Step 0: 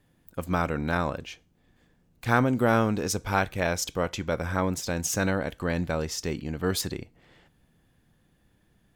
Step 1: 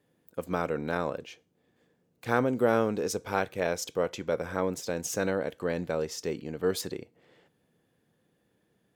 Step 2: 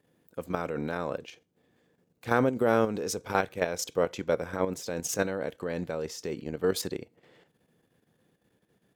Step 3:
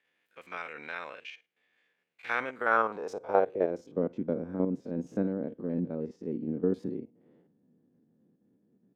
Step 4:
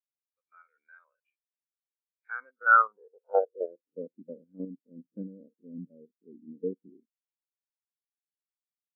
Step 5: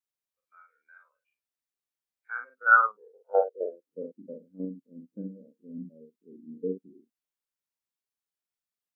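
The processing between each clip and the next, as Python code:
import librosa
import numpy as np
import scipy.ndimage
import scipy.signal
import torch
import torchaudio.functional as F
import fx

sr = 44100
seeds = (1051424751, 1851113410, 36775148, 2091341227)

y1 = scipy.signal.sosfilt(scipy.signal.butter(2, 130.0, 'highpass', fs=sr, output='sos'), x)
y1 = fx.peak_eq(y1, sr, hz=460.0, db=8.5, octaves=0.72)
y1 = y1 * librosa.db_to_amplitude(-5.5)
y2 = fx.level_steps(y1, sr, step_db=9)
y2 = y2 * librosa.db_to_amplitude(4.0)
y3 = fx.spec_steps(y2, sr, hold_ms=50)
y3 = fx.filter_sweep_bandpass(y3, sr, from_hz=2300.0, to_hz=240.0, start_s=2.38, end_s=3.93, q=2.4)
y3 = y3 * librosa.db_to_amplitude(8.5)
y4 = scipy.signal.sosfilt(scipy.signal.cheby1(6, 6, 5300.0, 'lowpass', fs=sr, output='sos'), y3)
y4 = fx.spectral_expand(y4, sr, expansion=2.5)
y4 = y4 * librosa.db_to_amplitude(4.5)
y5 = fx.doubler(y4, sr, ms=43.0, db=-4.5)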